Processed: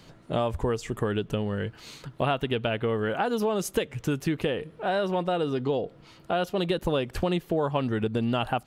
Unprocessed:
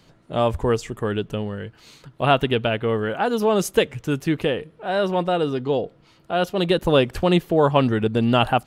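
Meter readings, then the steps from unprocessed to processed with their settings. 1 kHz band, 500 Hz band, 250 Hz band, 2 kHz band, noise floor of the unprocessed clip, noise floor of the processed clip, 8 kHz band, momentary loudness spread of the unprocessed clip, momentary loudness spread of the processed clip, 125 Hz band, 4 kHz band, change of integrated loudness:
−7.0 dB, −6.5 dB, −6.0 dB, −6.5 dB, −55 dBFS, −53 dBFS, −4.5 dB, 9 LU, 5 LU, −6.0 dB, −7.5 dB, −6.5 dB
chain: downward compressor 5 to 1, threshold −27 dBFS, peak gain reduction 14 dB
level +3 dB

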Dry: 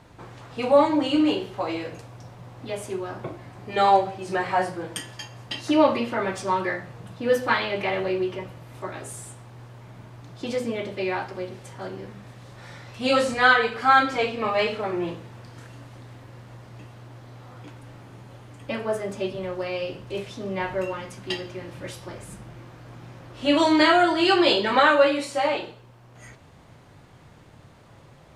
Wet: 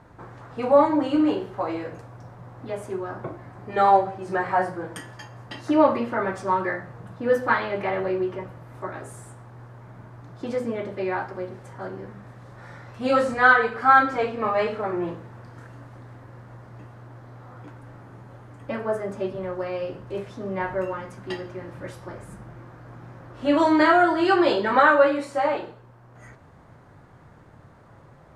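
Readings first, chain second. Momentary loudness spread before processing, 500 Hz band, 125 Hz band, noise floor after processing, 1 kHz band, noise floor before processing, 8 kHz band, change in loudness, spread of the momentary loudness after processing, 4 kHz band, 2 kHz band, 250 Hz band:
21 LU, +0.5 dB, 0.0 dB, −50 dBFS, +1.5 dB, −51 dBFS, can't be measured, +0.5 dB, 22 LU, −10.0 dB, +0.5 dB, 0.0 dB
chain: high shelf with overshoot 2,100 Hz −8 dB, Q 1.5

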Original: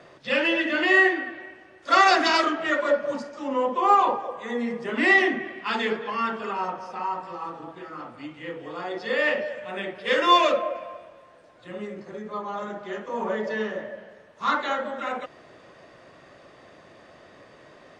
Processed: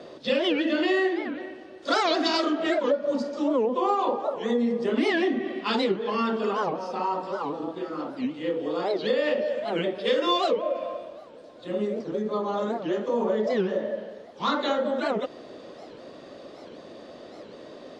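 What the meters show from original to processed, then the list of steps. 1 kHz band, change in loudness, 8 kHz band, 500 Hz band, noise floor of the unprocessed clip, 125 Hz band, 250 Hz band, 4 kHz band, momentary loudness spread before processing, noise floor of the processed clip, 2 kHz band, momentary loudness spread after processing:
−5.0 dB, −2.5 dB, can't be measured, +2.5 dB, −52 dBFS, +5.0 dB, +3.5 dB, −1.0 dB, 20 LU, −46 dBFS, −9.0 dB, 20 LU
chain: graphic EQ with 10 bands 125 Hz −3 dB, 250 Hz +10 dB, 500 Hz +8 dB, 2,000 Hz −5 dB, 4,000 Hz +9 dB
downward compressor 4 to 1, threshold −22 dBFS, peak gain reduction 12 dB
wow of a warped record 78 rpm, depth 250 cents

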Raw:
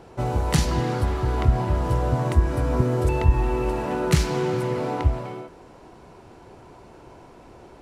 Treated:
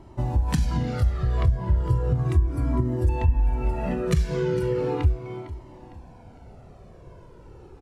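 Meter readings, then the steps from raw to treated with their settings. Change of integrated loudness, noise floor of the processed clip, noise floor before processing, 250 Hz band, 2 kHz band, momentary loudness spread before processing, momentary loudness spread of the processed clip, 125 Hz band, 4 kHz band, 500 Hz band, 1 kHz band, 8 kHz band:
−1.5 dB, −48 dBFS, −48 dBFS, −2.5 dB, −6.5 dB, 5 LU, 4 LU, −0.5 dB, −8.0 dB, −3.0 dB, −7.0 dB, −9.0 dB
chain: noise reduction from a noise print of the clip's start 8 dB
low-shelf EQ 440 Hz +11 dB
in parallel at +0.5 dB: brickwall limiter −6.5 dBFS, peak gain reduction 10.5 dB
on the sum: downward compressor 4 to 1, threshold −16 dBFS, peak gain reduction 15.5 dB
on a send: repeating echo 455 ms, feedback 40%, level −15.5 dB
on the sum: flanger whose copies keep moving one way falling 0.36 Hz
level −1.5 dB

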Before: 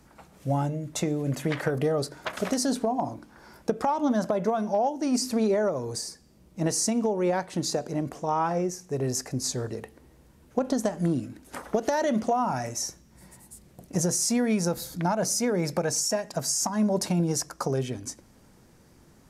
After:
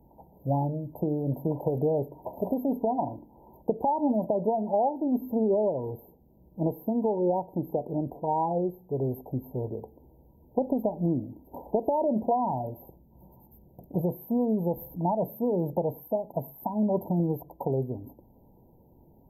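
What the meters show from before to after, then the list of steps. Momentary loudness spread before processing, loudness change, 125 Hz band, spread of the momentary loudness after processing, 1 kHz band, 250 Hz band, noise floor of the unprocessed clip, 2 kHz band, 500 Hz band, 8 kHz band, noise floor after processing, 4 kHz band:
9 LU, −1.5 dB, −1.0 dB, 9 LU, −0.5 dB, −1.0 dB, −57 dBFS, below −40 dB, 0.0 dB, below −40 dB, −58 dBFS, below −40 dB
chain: linear-phase brick-wall band-stop 1,000–12,000 Hz
parametric band 200 Hz −2 dB

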